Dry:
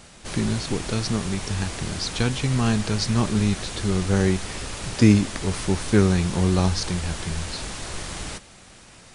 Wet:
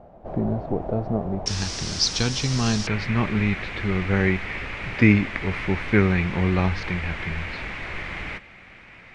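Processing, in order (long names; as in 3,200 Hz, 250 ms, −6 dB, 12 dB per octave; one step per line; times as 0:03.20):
low-pass with resonance 680 Hz, resonance Q 4.3, from 0:01.46 5,500 Hz, from 0:02.87 2,200 Hz
level −1.5 dB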